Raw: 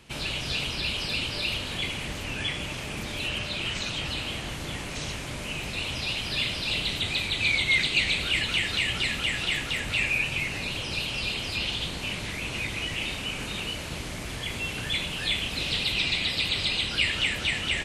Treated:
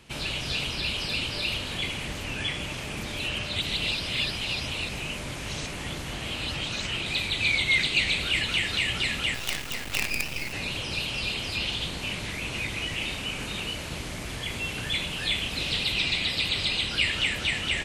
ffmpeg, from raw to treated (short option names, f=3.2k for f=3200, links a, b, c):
-filter_complex "[0:a]asettb=1/sr,asplit=3[a][b][c];[a]atrim=end=9.344[d];[b]atrim=start=9.34:end=10.53,asetpts=PTS-STARTPTS,afade=t=in:d=0.004:c=qsin,afade=t=out:st=1.186:d=0.004:c=qsin,acrusher=bits=4:dc=4:mix=0:aa=0.000001[e];[c]atrim=start=10.526[f];[d][e]acrossfade=d=0.004:c1=hsin:c2=qsin[g];[g][f]acrossfade=d=0.004:c1=qsin:c2=hsin,asplit=3[h][i][j];[h]atrim=end=3.562[k];[i]atrim=start=3.558:end=7.062,asetpts=PTS-STARTPTS,areverse[l];[j]atrim=start=7.058[m];[k][l]acrossfade=d=0.004:c1=hsin:c2=hsin[n];[n][m]acrossfade=d=0.004:c1=hsin:c2=hsin"